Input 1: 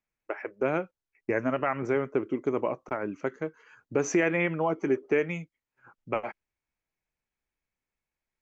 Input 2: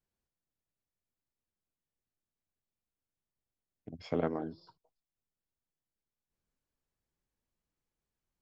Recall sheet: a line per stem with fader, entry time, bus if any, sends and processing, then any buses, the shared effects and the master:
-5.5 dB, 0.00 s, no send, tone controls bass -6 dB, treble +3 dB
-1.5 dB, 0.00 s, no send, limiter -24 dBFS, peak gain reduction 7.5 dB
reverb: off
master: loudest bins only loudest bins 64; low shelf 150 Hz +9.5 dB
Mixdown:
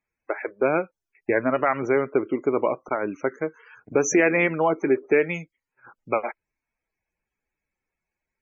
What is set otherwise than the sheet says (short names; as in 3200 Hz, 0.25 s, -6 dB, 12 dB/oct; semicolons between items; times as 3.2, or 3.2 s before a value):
stem 1 -5.5 dB -> +6.5 dB; master: missing low shelf 150 Hz +9.5 dB